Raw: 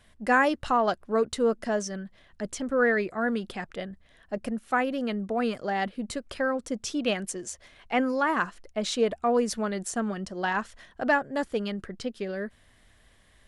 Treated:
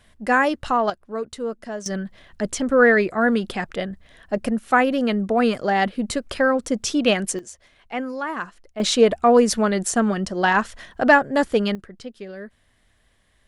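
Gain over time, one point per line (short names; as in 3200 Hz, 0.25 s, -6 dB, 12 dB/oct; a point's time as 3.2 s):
+3.5 dB
from 0.9 s -3.5 dB
from 1.86 s +8.5 dB
from 7.39 s -2.5 dB
from 8.8 s +9.5 dB
from 11.75 s -3 dB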